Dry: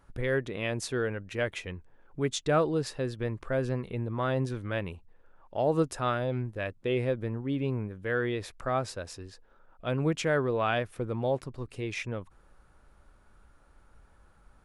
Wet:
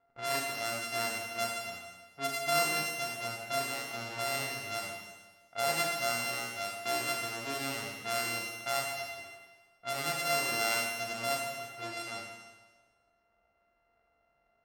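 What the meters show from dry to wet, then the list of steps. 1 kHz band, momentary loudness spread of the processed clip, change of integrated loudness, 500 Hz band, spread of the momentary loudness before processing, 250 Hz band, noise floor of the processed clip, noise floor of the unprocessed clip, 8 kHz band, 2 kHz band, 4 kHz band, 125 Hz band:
+1.0 dB, 12 LU, −2.0 dB, −7.0 dB, 13 LU, −12.5 dB, −74 dBFS, −60 dBFS, +8.0 dB, +2.0 dB, +6.5 dB, −16.0 dB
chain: samples sorted by size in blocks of 64 samples
high-pass filter 970 Hz 6 dB per octave
harmonic and percussive parts rebalanced harmonic +8 dB
low-pass that shuts in the quiet parts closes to 1,300 Hz, open at −24.5 dBFS
four-comb reverb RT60 1.3 s, combs from 26 ms, DRR −0.5 dB
level −9 dB

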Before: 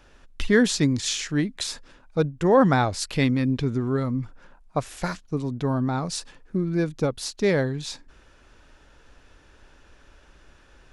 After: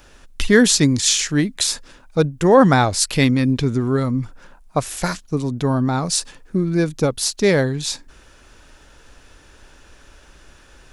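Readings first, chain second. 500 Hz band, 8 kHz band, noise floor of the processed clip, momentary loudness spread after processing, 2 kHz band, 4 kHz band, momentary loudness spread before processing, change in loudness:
+5.5 dB, +12.0 dB, −49 dBFS, 12 LU, +6.5 dB, +9.0 dB, 12 LU, +6.0 dB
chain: high-shelf EQ 6,400 Hz +12 dB
level +5.5 dB

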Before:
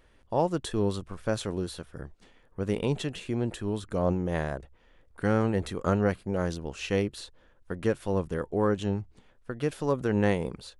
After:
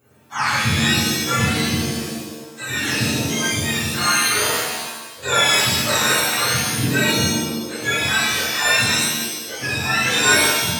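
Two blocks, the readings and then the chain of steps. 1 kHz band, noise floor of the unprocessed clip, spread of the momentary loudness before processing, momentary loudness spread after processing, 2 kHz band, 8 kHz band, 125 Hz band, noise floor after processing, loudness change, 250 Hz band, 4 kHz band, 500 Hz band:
+12.5 dB, −61 dBFS, 15 LU, 11 LU, +21.5 dB, +27.5 dB, +6.0 dB, −38 dBFS, +12.0 dB, +5.0 dB, +25.0 dB, +1.5 dB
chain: frequency axis turned over on the octave scale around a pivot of 870 Hz
reverb with rising layers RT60 1.1 s, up +7 semitones, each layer −2 dB, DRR −9.5 dB

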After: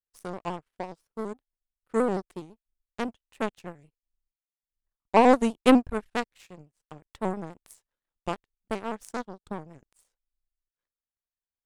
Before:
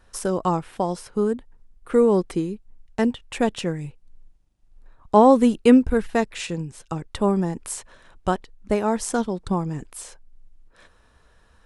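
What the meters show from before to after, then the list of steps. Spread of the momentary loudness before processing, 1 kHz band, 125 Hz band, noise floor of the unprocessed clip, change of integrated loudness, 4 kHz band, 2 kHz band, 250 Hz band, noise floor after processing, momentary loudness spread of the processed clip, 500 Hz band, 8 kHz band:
17 LU, −4.5 dB, −13.0 dB, −58 dBFS, −5.5 dB, −4.5 dB, −2.0 dB, −7.5 dB, below −85 dBFS, 20 LU, −7.0 dB, −13.5 dB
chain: power curve on the samples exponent 2
pitch modulation by a square or saw wave square 6 Hz, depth 100 cents
level +1 dB

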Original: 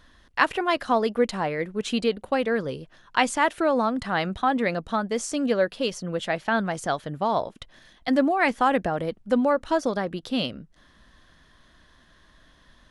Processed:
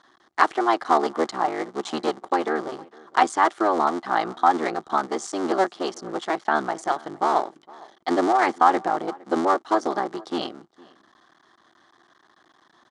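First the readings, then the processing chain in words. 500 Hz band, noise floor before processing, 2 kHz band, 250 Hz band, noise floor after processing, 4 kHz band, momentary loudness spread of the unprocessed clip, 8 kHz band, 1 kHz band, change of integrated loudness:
−0.5 dB, −58 dBFS, −1.5 dB, −2.0 dB, −61 dBFS, −3.0 dB, 7 LU, −1.5 dB, +5.0 dB, +1.5 dB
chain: sub-harmonics by changed cycles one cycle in 3, muted
loudspeaker in its box 290–8,200 Hz, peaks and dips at 350 Hz +9 dB, 520 Hz −5 dB, 780 Hz +9 dB, 1,200 Hz +8 dB, 2,600 Hz −9 dB
slap from a distant wall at 79 metres, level −23 dB

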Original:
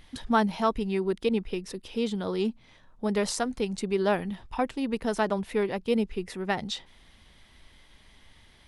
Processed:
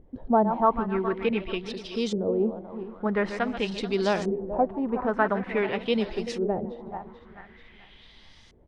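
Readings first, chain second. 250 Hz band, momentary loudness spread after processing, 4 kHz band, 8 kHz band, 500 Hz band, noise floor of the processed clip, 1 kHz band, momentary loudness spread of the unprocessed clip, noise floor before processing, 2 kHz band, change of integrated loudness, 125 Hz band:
+1.0 dB, 10 LU, 0.0 dB, can't be measured, +2.5 dB, −53 dBFS, +3.5 dB, 8 LU, −57 dBFS, +2.5 dB, +2.0 dB, +0.5 dB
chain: feedback delay that plays each chunk backwards 218 ms, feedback 59%, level −10 dB
echo with shifted repeats 152 ms, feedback 37%, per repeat +120 Hz, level −22.5 dB
auto-filter low-pass saw up 0.47 Hz 430–6,500 Hz

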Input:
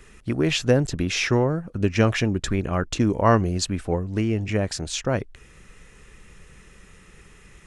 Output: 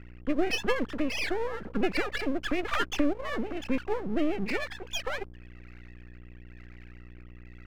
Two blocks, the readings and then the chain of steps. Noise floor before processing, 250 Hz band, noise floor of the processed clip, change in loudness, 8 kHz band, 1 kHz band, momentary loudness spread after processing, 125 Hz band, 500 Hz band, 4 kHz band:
−51 dBFS, −6.5 dB, −47 dBFS, −7.5 dB, −14.0 dB, −7.0 dB, 22 LU, −20.5 dB, −7.5 dB, −6.5 dB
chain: three sine waves on the formant tracks
drawn EQ curve 300 Hz 0 dB, 700 Hz −12 dB, 1,400 Hz +3 dB
downward compressor 5 to 1, threshold −23 dBFS, peak gain reduction 8.5 dB
rotating-speaker cabinet horn 1 Hz
mains hum 60 Hz, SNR 16 dB
half-wave rectification
one half of a high-frequency compander decoder only
level +4.5 dB

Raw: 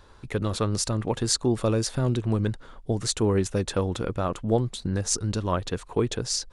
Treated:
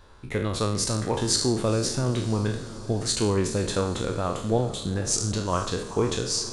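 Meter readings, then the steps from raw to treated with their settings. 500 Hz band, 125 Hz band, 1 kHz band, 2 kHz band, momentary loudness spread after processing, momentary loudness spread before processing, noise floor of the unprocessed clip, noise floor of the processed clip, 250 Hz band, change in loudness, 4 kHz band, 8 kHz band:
+0.5 dB, −0.5 dB, +2.0 dB, +2.5 dB, 5 LU, 5 LU, −50 dBFS, −38 dBFS, 0.0 dB, +0.5 dB, +2.5 dB, +2.0 dB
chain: peak hold with a decay on every bin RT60 0.59 s
feedback delay with all-pass diffusion 465 ms, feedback 63%, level −16 dB
level −1.5 dB

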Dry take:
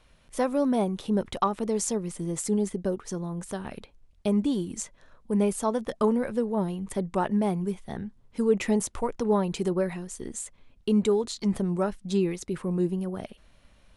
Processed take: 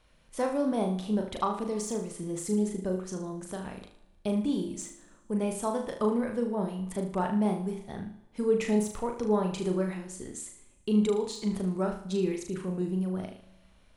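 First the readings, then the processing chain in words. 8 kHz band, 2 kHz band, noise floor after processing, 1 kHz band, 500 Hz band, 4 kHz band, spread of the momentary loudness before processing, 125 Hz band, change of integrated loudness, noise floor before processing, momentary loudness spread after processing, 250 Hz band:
−5.0 dB, −3.0 dB, −60 dBFS, −3.0 dB, −3.0 dB, −3.0 dB, 12 LU, −2.5 dB, −2.5 dB, −60 dBFS, 12 LU, −2.5 dB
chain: de-essing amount 55%
flutter between parallel walls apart 6.5 metres, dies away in 0.47 s
four-comb reverb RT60 1.4 s, combs from 32 ms, DRR 17.5 dB
level −4.5 dB

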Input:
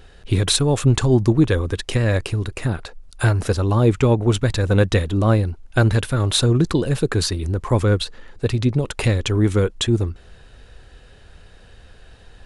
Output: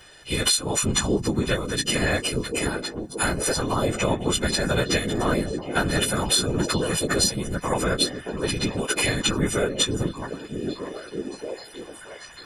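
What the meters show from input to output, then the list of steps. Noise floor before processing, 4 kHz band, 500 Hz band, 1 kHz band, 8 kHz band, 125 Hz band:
−47 dBFS, +1.5 dB, −4.0 dB, 0.0 dB, +5.0 dB, −11.5 dB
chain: every partial snapped to a pitch grid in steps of 3 semitones
low-shelf EQ 140 Hz −11 dB
downward compressor, threshold −17 dBFS, peak gain reduction 12 dB
echo through a band-pass that steps 625 ms, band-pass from 190 Hz, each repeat 0.7 octaves, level −1 dB
random phases in short frames
level −1.5 dB

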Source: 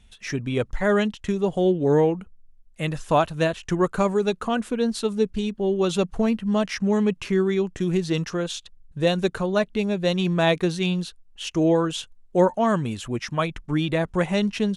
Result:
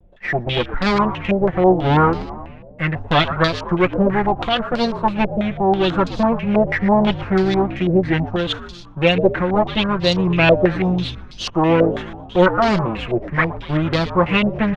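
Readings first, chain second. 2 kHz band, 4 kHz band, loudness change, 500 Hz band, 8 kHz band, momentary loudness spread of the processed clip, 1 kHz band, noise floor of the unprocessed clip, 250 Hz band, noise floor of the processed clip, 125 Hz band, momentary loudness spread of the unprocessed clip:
+9.0 dB, +7.5 dB, +5.5 dB, +4.5 dB, can't be measured, 8 LU, +9.0 dB, −54 dBFS, +4.5 dB, −38 dBFS, +6.0 dB, 8 LU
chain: lower of the sound and its delayed copy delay 5.7 ms
echo with shifted repeats 120 ms, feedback 62%, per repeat −57 Hz, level −13 dB
low-pass on a step sequencer 6.1 Hz 580–4,600 Hz
level +4.5 dB

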